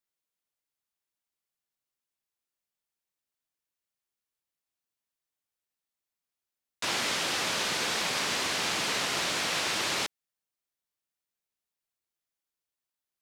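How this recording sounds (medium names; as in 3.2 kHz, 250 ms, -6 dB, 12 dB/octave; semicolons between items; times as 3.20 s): noise floor -90 dBFS; spectral tilt -2.5 dB/octave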